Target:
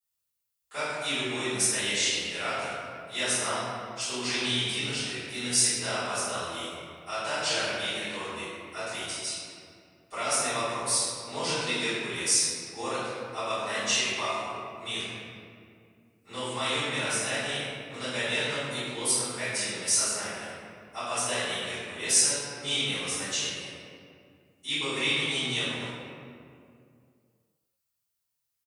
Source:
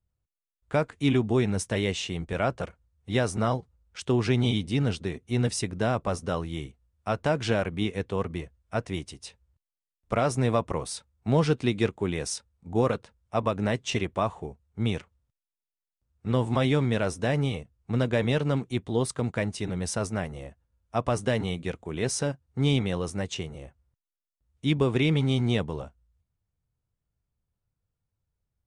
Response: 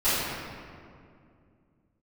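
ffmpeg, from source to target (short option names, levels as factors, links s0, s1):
-filter_complex "[0:a]aderivative,asplit=2[s0][s1];[s1]adelay=24,volume=0.282[s2];[s0][s2]amix=inputs=2:normalize=0[s3];[1:a]atrim=start_sample=2205[s4];[s3][s4]afir=irnorm=-1:irlink=0"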